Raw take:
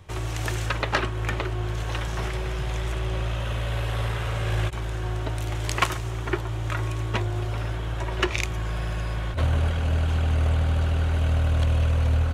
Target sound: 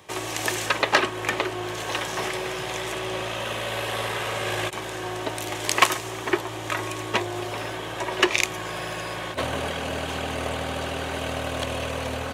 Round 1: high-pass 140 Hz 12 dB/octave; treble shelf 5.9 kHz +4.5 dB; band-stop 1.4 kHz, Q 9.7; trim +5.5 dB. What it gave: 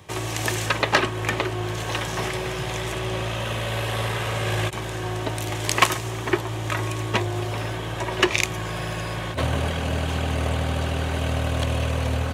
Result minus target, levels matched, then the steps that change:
125 Hz band +9.0 dB
change: high-pass 280 Hz 12 dB/octave

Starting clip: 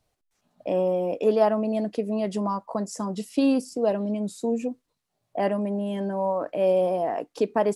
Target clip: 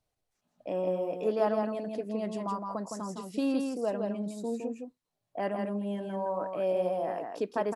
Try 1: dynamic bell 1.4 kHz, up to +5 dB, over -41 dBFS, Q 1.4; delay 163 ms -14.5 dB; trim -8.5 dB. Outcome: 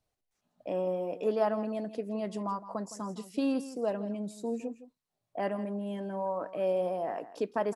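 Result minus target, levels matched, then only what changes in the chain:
echo-to-direct -10 dB
change: delay 163 ms -4.5 dB

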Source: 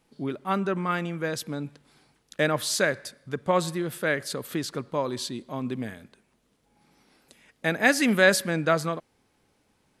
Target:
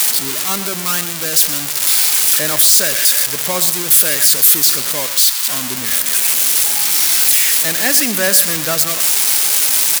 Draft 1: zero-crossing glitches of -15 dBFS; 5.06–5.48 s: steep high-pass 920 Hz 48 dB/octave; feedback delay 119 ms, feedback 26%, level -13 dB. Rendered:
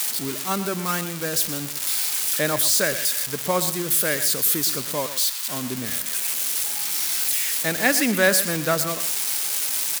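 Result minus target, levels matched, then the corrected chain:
zero-crossing glitches: distortion -10 dB
zero-crossing glitches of -4 dBFS; 5.06–5.48 s: steep high-pass 920 Hz 48 dB/octave; feedback delay 119 ms, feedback 26%, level -13 dB

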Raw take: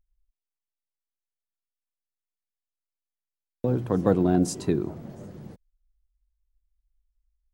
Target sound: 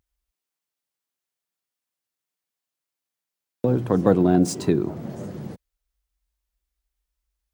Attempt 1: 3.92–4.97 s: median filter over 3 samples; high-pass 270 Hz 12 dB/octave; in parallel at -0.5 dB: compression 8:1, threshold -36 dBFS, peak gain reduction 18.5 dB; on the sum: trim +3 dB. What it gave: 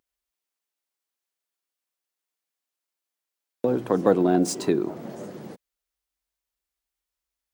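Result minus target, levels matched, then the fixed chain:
125 Hz band -6.5 dB
3.92–4.97 s: median filter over 3 samples; high-pass 95 Hz 12 dB/octave; in parallel at -0.5 dB: compression 8:1, threshold -36 dBFS, peak gain reduction 20 dB; on the sum: trim +3 dB

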